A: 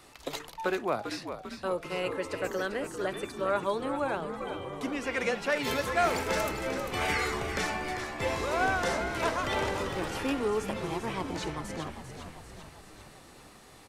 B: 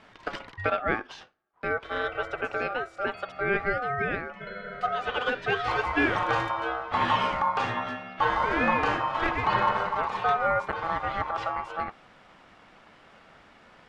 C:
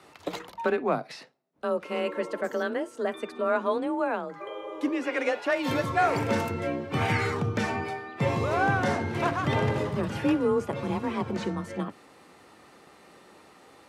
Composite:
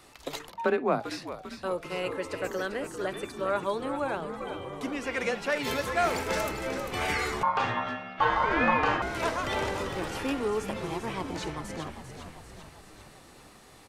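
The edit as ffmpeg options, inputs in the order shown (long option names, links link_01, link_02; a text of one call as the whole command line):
ffmpeg -i take0.wav -i take1.wav -i take2.wav -filter_complex "[0:a]asplit=3[link_01][link_02][link_03];[link_01]atrim=end=0.492[link_04];[2:a]atrim=start=0.488:end=1.002[link_05];[link_02]atrim=start=0.998:end=7.432[link_06];[1:a]atrim=start=7.428:end=9.022[link_07];[link_03]atrim=start=9.018[link_08];[link_04][link_05]acrossfade=duration=0.004:curve1=hsin:curve2=hsin[link_09];[link_09][link_06]acrossfade=duration=0.004:curve1=hsin:curve2=hsin[link_10];[link_10][link_07]acrossfade=duration=0.004:curve1=hsin:curve2=hsin[link_11];[link_11][link_08]acrossfade=duration=0.004:curve1=hsin:curve2=hsin" out.wav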